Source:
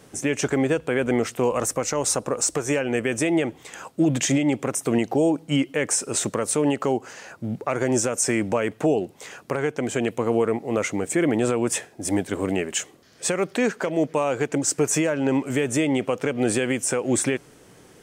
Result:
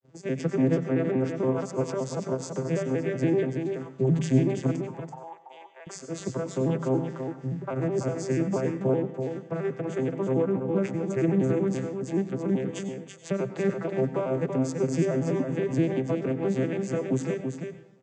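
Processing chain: arpeggiated vocoder major triad, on C3, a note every 95 ms; expander -46 dBFS; 4.76–5.87 ladder high-pass 810 Hz, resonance 70%; echo 0.333 s -6 dB; plate-style reverb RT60 0.51 s, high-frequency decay 0.85×, pre-delay 80 ms, DRR 11.5 dB; gain -3.5 dB

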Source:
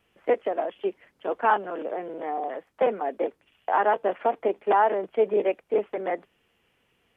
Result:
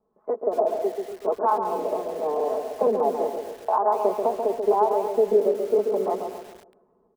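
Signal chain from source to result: Chebyshev low-pass 1100 Hz, order 4; low shelf 160 Hz -9.5 dB; comb 4.7 ms, depth 75%; AGC gain up to 8 dB; in parallel at -0.5 dB: limiter -10 dBFS, peak gain reduction 7.5 dB; on the sum: compressor 4:1, threshold -10 dBFS, peak gain reduction 5.5 dB; harmonic tremolo 1.7 Hz, depth 50%, crossover 810 Hz; darkening echo 0.136 s, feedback 48%, low-pass 840 Hz, level -4 dB; lo-fi delay 0.238 s, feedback 35%, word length 5-bit, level -12.5 dB; gain -5.5 dB

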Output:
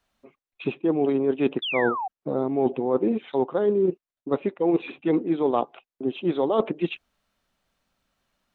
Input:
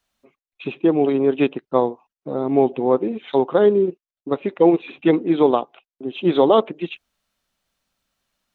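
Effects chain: high shelf 3100 Hz -8.5 dB; reverse; compressor 12:1, threshold -22 dBFS, peak gain reduction 13.5 dB; reverse; painted sound fall, 1.62–2.08, 720–3600 Hz -32 dBFS; gain +3.5 dB

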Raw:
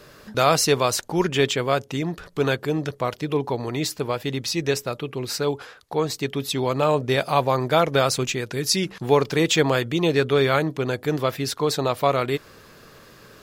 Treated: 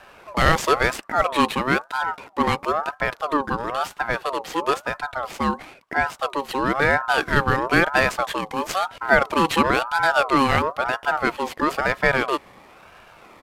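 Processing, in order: median filter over 9 samples; downsampling 32000 Hz; ring modulator with a swept carrier 910 Hz, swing 30%, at 1 Hz; gain +4 dB

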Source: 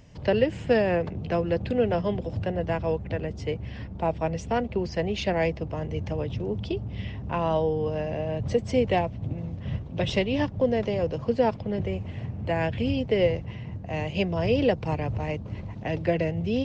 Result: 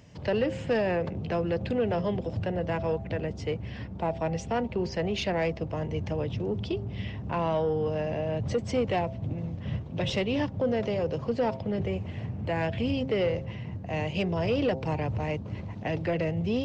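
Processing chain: HPF 78 Hz; de-hum 132.5 Hz, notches 7; in parallel at +2 dB: limiter -20.5 dBFS, peak gain reduction 9.5 dB; on the sum: soft clip -11 dBFS, distortion -21 dB; gain -6.5 dB

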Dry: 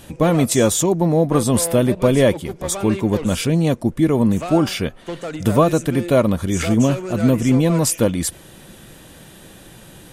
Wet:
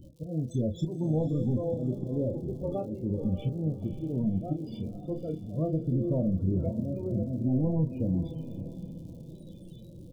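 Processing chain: rotary speaker horn 0.7 Hz; harmonic-percussive split percussive -14 dB; auto swell 0.586 s; overloaded stage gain 20.5 dB; treble ducked by the level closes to 1500 Hz, closed at -22 dBFS; loudest bins only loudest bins 16; crackle 100/s -51 dBFS; compressor, threshold -27 dBFS, peak gain reduction 5.5 dB; Butterworth band-stop 1700 Hz, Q 0.62; bell 620 Hz -2.5 dB 2.7 oct; doubler 32 ms -7.5 dB; diffused feedback echo 0.539 s, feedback 41%, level -10.5 dB; gain +3 dB

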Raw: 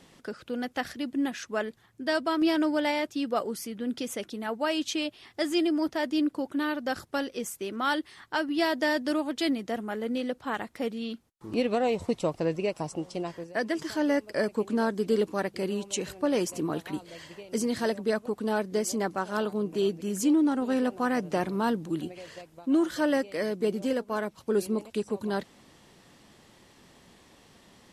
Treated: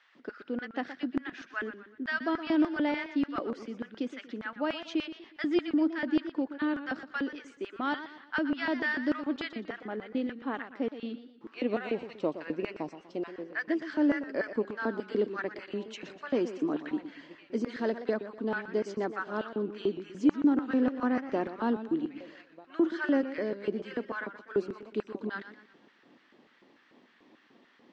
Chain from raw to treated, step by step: Gaussian blur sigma 2.1 samples; LFO high-pass square 3.4 Hz 270–1500 Hz; warbling echo 0.121 s, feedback 39%, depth 128 cents, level -12 dB; gain -5 dB

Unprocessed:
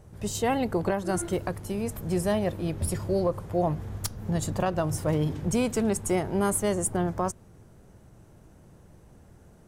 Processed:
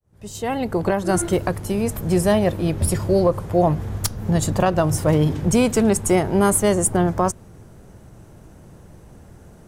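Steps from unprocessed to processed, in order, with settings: opening faded in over 1.15 s; gain +8.5 dB

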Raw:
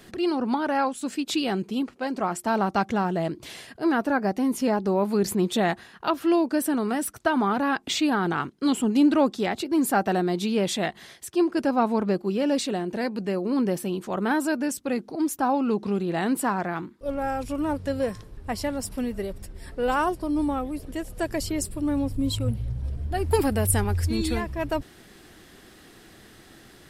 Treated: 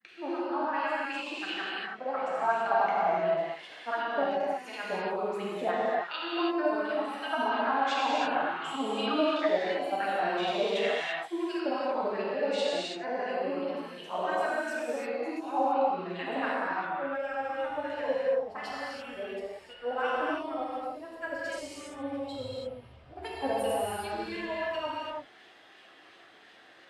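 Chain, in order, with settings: grains, pitch spread up and down by 0 st; wah 2.8 Hz 590–3200 Hz, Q 3.2; non-linear reverb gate 0.36 s flat, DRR -7 dB

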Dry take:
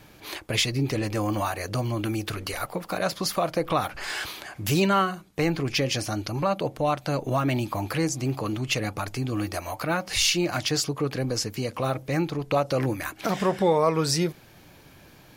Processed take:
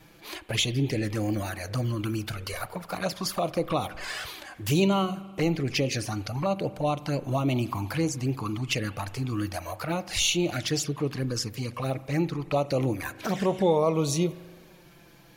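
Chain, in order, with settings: envelope flanger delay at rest 6.8 ms, full sweep at -21 dBFS; spring tank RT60 1.6 s, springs 41 ms, chirp 65 ms, DRR 16 dB

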